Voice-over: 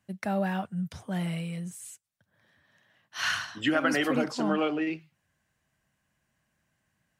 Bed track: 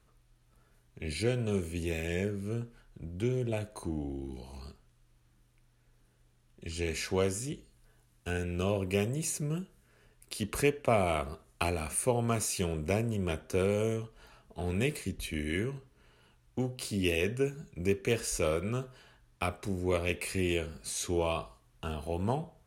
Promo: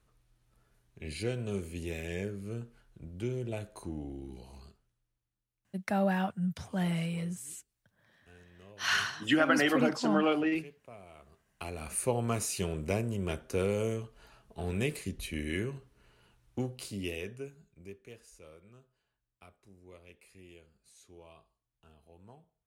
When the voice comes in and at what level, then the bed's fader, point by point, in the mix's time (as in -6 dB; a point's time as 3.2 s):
5.65 s, 0.0 dB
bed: 4.51 s -4 dB
5.35 s -24 dB
11.14 s -24 dB
11.97 s -1.5 dB
16.6 s -1.5 dB
18.35 s -24 dB